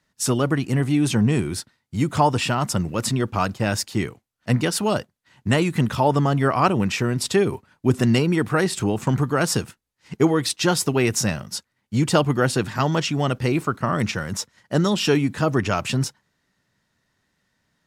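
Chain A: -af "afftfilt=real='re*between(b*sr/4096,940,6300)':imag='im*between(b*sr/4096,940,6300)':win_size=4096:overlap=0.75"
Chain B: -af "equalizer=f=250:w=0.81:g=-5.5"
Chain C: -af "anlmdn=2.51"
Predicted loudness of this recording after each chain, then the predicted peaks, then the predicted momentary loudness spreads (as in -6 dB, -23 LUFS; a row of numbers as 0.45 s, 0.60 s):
-29.0 LUFS, -24.0 LUFS, -22.0 LUFS; -9.0 dBFS, -5.5 dBFS, -4.5 dBFS; 11 LU, 8 LU, 8 LU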